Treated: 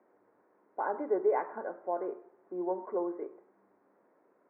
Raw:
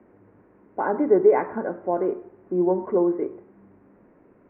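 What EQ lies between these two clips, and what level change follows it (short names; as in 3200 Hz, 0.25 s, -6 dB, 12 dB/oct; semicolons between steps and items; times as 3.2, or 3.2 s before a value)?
BPF 650–2000 Hz; tilt -2 dB/oct; -6.0 dB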